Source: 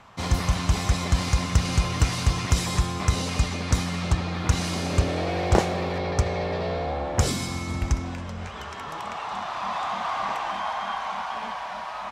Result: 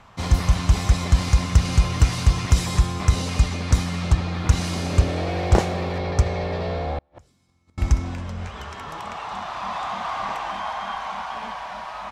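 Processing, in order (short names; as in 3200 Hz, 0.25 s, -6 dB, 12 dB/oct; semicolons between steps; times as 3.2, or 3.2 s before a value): low shelf 85 Hz +9 dB; 6.98–7.78 flipped gate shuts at -19 dBFS, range -38 dB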